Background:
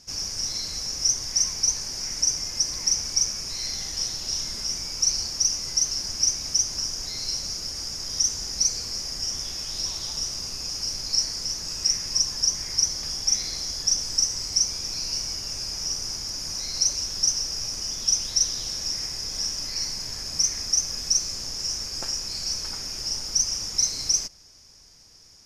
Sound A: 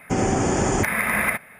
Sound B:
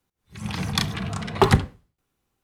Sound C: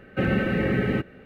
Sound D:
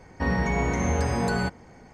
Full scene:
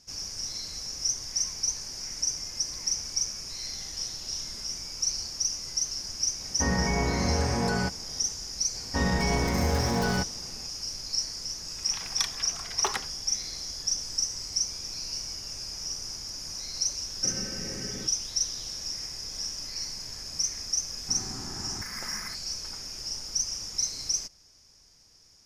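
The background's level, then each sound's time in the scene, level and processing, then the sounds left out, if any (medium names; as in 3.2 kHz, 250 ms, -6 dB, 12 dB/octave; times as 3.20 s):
background -6 dB
6.40 s: add D -2 dB
8.74 s: add D -1.5 dB + tracing distortion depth 0.11 ms
11.43 s: add B -7.5 dB + Bessel high-pass 860 Hz
17.06 s: add C -16.5 dB
20.98 s: add A -17 dB + static phaser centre 1.3 kHz, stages 4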